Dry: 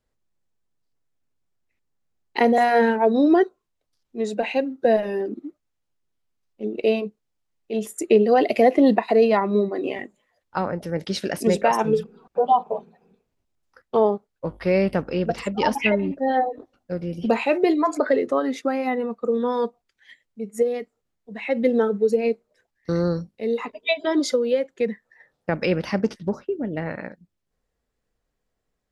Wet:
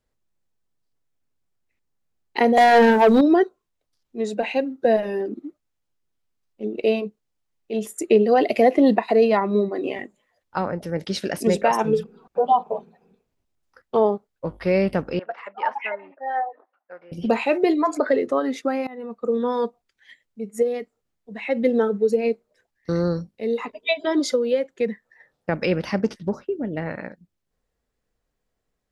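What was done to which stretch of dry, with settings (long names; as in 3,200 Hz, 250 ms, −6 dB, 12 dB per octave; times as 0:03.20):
0:02.57–0:03.21: leveller curve on the samples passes 2
0:15.19–0:17.12: flat-topped band-pass 1,200 Hz, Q 1
0:18.87–0:19.30: fade in linear, from −22.5 dB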